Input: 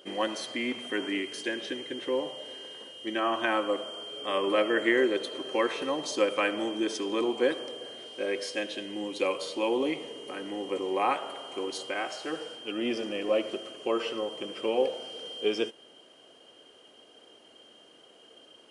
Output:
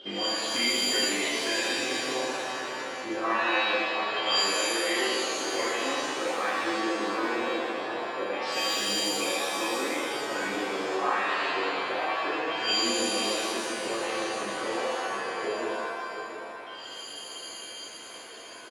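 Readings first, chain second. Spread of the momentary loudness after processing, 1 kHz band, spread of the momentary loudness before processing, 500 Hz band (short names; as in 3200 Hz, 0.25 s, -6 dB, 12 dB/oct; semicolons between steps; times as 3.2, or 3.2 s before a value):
13 LU, +5.0 dB, 11 LU, -1.5 dB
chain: compressor 6:1, threshold -38 dBFS, peak gain reduction 17 dB; LFO low-pass saw down 0.24 Hz 780–3700 Hz; echo 0.693 s -9.5 dB; shimmer reverb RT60 1.3 s, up +7 st, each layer -2 dB, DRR -7 dB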